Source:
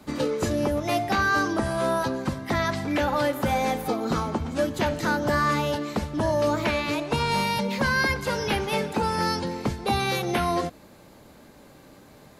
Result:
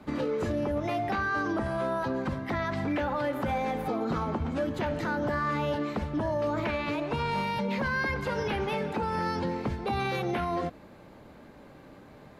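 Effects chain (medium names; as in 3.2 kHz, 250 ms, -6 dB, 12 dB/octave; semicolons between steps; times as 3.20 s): tone controls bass 0 dB, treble -14 dB; peak limiter -22 dBFS, peak gain reduction 7 dB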